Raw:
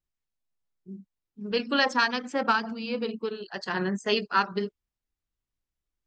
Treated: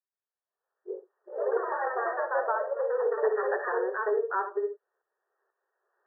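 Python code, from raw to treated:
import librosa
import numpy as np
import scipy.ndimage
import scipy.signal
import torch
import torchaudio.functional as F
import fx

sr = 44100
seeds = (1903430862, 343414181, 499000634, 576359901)

p1 = fx.lower_of_two(x, sr, delay_ms=2.6, at=(1.55, 2.31))
p2 = fx.recorder_agc(p1, sr, target_db=-17.5, rise_db_per_s=17.0, max_gain_db=30)
p3 = fx.env_lowpass_down(p2, sr, base_hz=850.0, full_db=-24.0)
p4 = fx.noise_reduce_blind(p3, sr, reduce_db=7)
p5 = p4 + fx.room_early_taps(p4, sr, ms=(64, 76), db=(-11.5, -11.5), dry=0)
p6 = fx.echo_pitch(p5, sr, ms=101, semitones=2, count=3, db_per_echo=-3.0)
y = fx.brickwall_bandpass(p6, sr, low_hz=360.0, high_hz=1900.0)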